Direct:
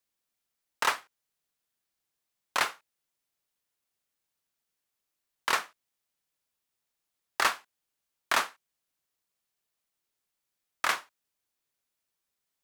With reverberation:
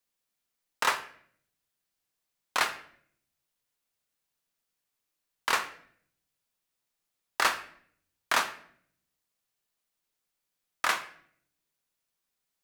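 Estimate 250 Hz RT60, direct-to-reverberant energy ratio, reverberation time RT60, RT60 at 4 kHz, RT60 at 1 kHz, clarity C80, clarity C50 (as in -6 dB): 0.90 s, 8.0 dB, 0.60 s, 0.50 s, 0.55 s, 16.0 dB, 12.5 dB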